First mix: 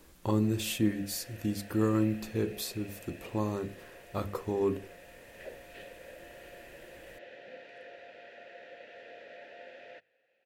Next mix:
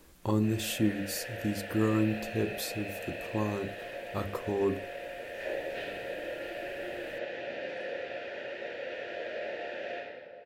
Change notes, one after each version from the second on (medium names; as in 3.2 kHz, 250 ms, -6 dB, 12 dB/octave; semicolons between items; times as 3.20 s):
reverb: on, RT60 2.1 s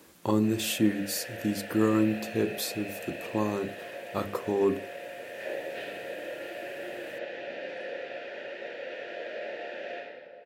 speech +4.0 dB; master: add high-pass 150 Hz 12 dB/octave